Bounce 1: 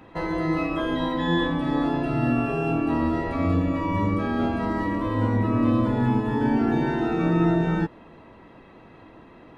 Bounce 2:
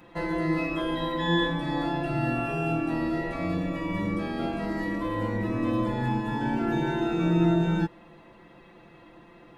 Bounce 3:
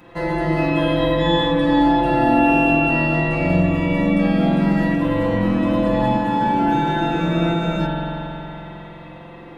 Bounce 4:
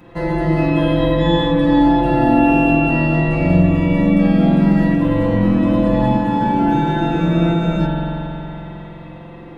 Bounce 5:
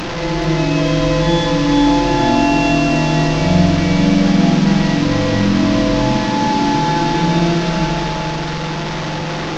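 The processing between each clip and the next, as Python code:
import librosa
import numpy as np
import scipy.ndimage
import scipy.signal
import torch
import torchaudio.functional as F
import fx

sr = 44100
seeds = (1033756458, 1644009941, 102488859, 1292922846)

y1 = fx.high_shelf(x, sr, hz=3700.0, db=8.5)
y1 = y1 + 0.68 * np.pad(y1, (int(5.8 * sr / 1000.0), 0))[:len(y1)]
y1 = y1 * librosa.db_to_amplitude(-5.5)
y2 = fx.rev_spring(y1, sr, rt60_s=3.6, pass_ms=(45,), chirp_ms=40, drr_db=-5.0)
y2 = y2 * librosa.db_to_amplitude(5.0)
y3 = fx.low_shelf(y2, sr, hz=410.0, db=7.5)
y3 = y3 * librosa.db_to_amplitude(-1.5)
y4 = fx.delta_mod(y3, sr, bps=32000, step_db=-17.0)
y4 = fx.echo_thinned(y4, sr, ms=438, feedback_pct=80, hz=280.0, wet_db=-7.5)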